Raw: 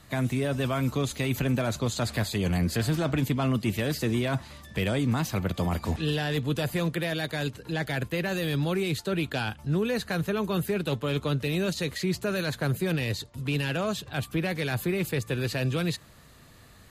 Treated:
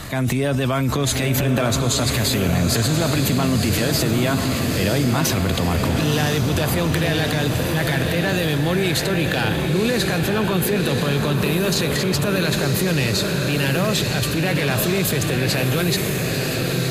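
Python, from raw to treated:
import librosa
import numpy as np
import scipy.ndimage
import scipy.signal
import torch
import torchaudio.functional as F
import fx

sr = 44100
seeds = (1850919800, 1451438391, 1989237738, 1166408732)

y = fx.transient(x, sr, attack_db=-5, sustain_db=8)
y = fx.echo_diffused(y, sr, ms=983, feedback_pct=56, wet_db=-4)
y = fx.env_flatten(y, sr, amount_pct=50)
y = y * librosa.db_to_amplitude(4.5)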